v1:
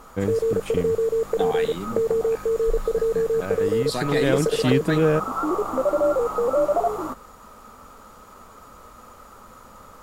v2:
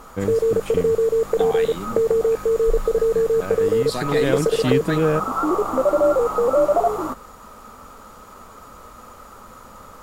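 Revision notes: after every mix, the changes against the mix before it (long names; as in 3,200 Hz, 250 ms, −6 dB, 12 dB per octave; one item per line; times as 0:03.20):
background +3.5 dB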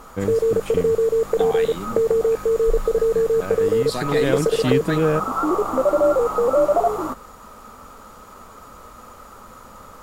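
nothing changed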